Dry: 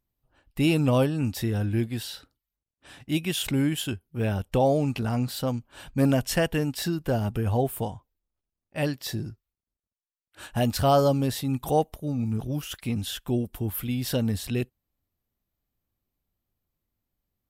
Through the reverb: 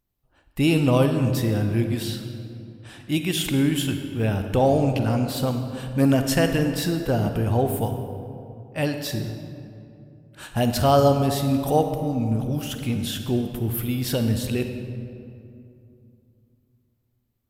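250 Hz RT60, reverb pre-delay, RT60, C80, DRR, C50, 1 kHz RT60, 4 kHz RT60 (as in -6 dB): 3.3 s, 38 ms, 2.6 s, 7.5 dB, 6.0 dB, 6.5 dB, 2.4 s, 1.5 s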